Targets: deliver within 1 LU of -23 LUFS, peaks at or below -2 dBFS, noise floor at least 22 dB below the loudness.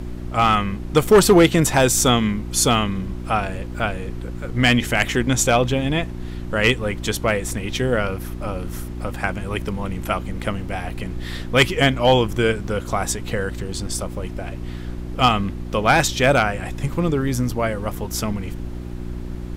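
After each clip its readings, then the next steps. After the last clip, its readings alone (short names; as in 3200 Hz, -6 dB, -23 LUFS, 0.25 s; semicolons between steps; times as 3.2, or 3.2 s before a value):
hum 60 Hz; harmonics up to 360 Hz; hum level -28 dBFS; noise floor -31 dBFS; noise floor target -43 dBFS; loudness -20.5 LUFS; peak -4.5 dBFS; loudness target -23.0 LUFS
-> de-hum 60 Hz, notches 6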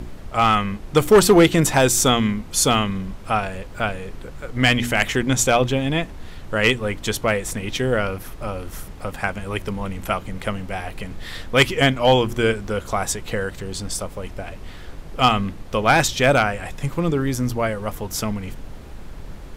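hum none; noise floor -37 dBFS; noise floor target -43 dBFS
-> noise print and reduce 6 dB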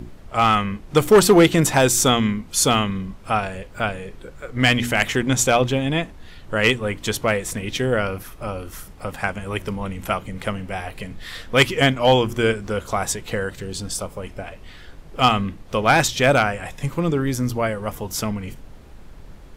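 noise floor -42 dBFS; noise floor target -43 dBFS
-> noise print and reduce 6 dB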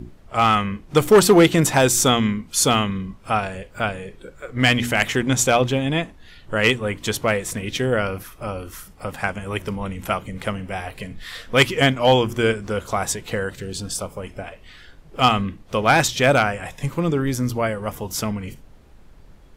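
noise floor -47 dBFS; loudness -20.5 LUFS; peak -4.5 dBFS; loudness target -23.0 LUFS
-> gain -2.5 dB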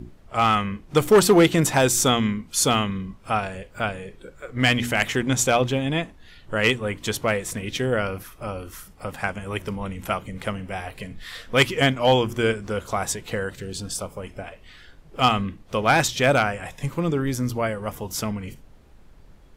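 loudness -23.0 LUFS; peak -7.0 dBFS; noise floor -49 dBFS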